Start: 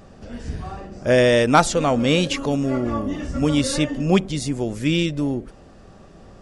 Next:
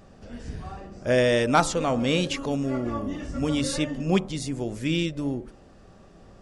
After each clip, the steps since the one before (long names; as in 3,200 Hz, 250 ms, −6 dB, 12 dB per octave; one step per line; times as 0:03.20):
hum removal 73.79 Hz, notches 18
level −5 dB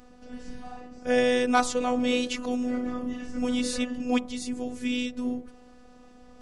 reversed playback
upward compression, threshold −44 dBFS
reversed playback
phases set to zero 248 Hz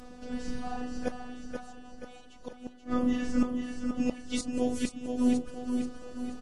gate with flip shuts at −19 dBFS, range −32 dB
on a send: repeating echo 481 ms, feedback 52%, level −6 dB
on the sum: level +5 dB
Ogg Vorbis 32 kbit/s 48,000 Hz